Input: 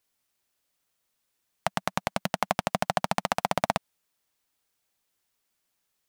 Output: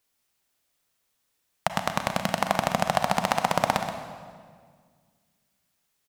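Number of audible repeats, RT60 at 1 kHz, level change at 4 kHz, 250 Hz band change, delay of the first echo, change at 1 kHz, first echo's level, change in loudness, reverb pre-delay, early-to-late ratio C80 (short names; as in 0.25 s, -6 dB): 1, 1.7 s, +3.0 dB, +3.5 dB, 0.127 s, +3.5 dB, -10.5 dB, +3.0 dB, 31 ms, 6.5 dB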